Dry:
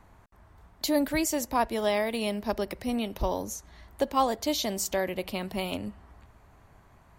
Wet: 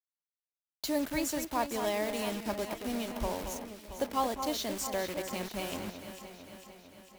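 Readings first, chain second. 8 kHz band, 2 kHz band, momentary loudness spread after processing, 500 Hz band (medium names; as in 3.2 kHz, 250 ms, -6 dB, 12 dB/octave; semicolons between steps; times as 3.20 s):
-4.0 dB, -4.0 dB, 15 LU, -5.0 dB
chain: bit crusher 6-bit; echo whose repeats swap between lows and highs 225 ms, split 2.4 kHz, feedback 77%, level -7.5 dB; trim -6 dB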